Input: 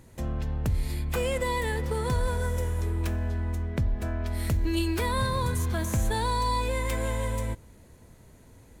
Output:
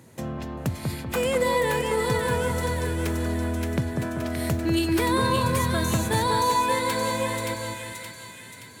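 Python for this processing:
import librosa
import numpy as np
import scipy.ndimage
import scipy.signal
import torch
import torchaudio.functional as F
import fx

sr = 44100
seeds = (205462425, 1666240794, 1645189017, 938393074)

p1 = scipy.signal.sosfilt(scipy.signal.butter(4, 110.0, 'highpass', fs=sr, output='sos'), x)
p2 = p1 + fx.echo_split(p1, sr, split_hz=1400.0, low_ms=194, high_ms=573, feedback_pct=52, wet_db=-3, dry=0)
y = p2 * 10.0 ** (4.0 / 20.0)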